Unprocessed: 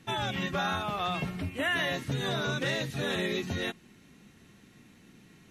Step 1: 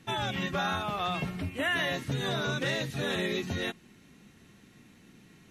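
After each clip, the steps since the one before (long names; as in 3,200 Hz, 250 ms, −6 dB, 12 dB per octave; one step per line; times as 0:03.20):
no processing that can be heard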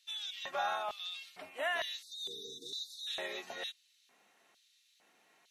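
time-frequency box erased 0:02.03–0:03.07, 480–3,500 Hz
auto-filter high-pass square 1.1 Hz 690–3,900 Hz
level −7.5 dB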